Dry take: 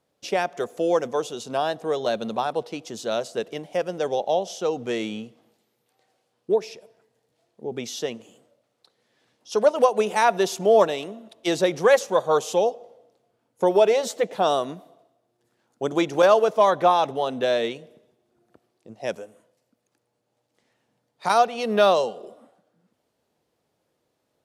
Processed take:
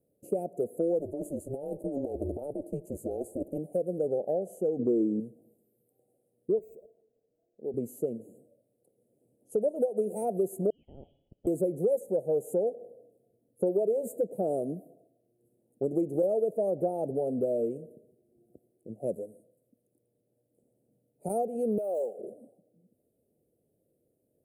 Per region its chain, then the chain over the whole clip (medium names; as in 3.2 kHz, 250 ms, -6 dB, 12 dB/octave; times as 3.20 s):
0.99–3.58 s: high-pass 260 Hz + compressor with a negative ratio -28 dBFS + ring modulator 140 Hz
4.79–5.20 s: low-pass 8.4 kHz 24 dB/octave + peaking EQ 310 Hz +13 dB 1.1 oct
6.59–7.74 s: high-pass 560 Hz 6 dB/octave + decimation joined by straight lines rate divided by 4×
10.70–11.47 s: compression 12:1, threshold -29 dBFS + frequency inversion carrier 3.6 kHz
21.78–22.19 s: median filter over 3 samples + high-pass 570 Hz + compression 4:1, threshold -21 dBFS
whole clip: inverse Chebyshev band-stop 1–5.8 kHz, stop band 40 dB; compression 3:1, threshold -28 dBFS; trim +1.5 dB